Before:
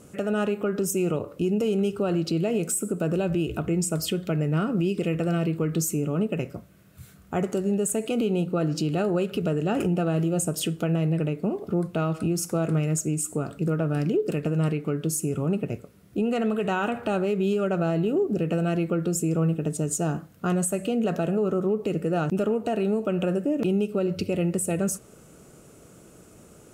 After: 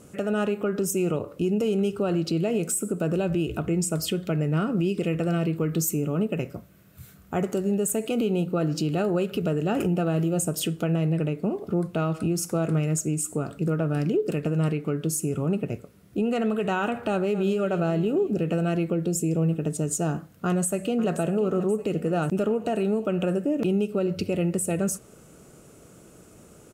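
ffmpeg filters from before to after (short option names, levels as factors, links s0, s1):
-filter_complex "[0:a]asettb=1/sr,asplit=3[s0][s1][s2];[s0]atrim=end=5.564[s3];[s1]atrim=start=5.56:end=10.67,asetpts=PTS-STARTPTS,afade=t=in:d=0.004:c=qsin,afade=t=out:st=5.106:d=0.004:c=qsin,equalizer=f=14000:w=6.6:g=10.5[s4];[s2]atrim=start=10.666[s5];[s3][s4]acrossfade=d=0.004:c1=hsin:c2=qsin[s6];[s6][s5]acrossfade=d=0.004:c1=qsin:c2=hsin,asplit=2[s7][s8];[s8]afade=t=in:st=17.09:d=0.01,afade=t=out:st=17.55:d=0.01,aecho=0:1:250|500|750|1000|1250|1500:0.211349|0.126809|0.0760856|0.0456514|0.0273908|0.0164345[s9];[s7][s9]amix=inputs=2:normalize=0,asettb=1/sr,asplit=3[s10][s11][s12];[s10]atrim=end=18.924[s13];[s11]atrim=start=18.92:end=19.51,asetpts=PTS-STARTPTS,afade=t=in:d=0.004:c=qsin,afade=t=out:st=0.586:d=0.004:c=qsin,equalizer=f=1300:t=o:w=0.56:g=-12[s14];[s12]atrim=start=19.506[s15];[s13][s14]acrossfade=d=0.004:c1=hsin:c2=qsin[s16];[s16][s15]acrossfade=d=0.004:c1=qsin:c2=hsin,asplit=2[s17][s18];[s18]afade=t=in:st=20.45:d=0.01,afade=t=out:st=21.11:d=0.01,aecho=0:1:530|1060|1590|2120|2650|3180:0.199526|0.119716|0.0718294|0.0430977|0.0258586|0.0155152[s19];[s17][s19]amix=inputs=2:normalize=0"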